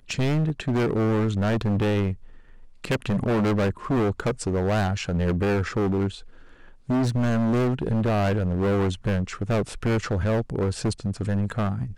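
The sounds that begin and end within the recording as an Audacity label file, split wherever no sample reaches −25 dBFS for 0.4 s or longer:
2.840000	6.080000	sound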